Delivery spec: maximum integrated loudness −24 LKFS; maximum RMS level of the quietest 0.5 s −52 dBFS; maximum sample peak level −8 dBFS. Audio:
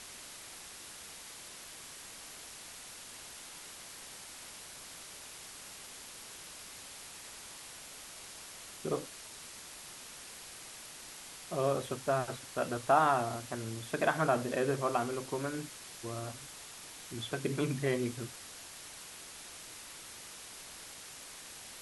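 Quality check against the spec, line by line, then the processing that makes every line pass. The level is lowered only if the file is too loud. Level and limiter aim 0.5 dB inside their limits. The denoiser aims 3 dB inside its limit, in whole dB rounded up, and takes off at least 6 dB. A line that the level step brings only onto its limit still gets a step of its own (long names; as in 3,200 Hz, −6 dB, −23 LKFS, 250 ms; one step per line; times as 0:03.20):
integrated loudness −38.0 LKFS: in spec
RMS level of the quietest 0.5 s −49 dBFS: out of spec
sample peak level −14.5 dBFS: in spec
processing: broadband denoise 6 dB, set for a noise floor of −49 dBFS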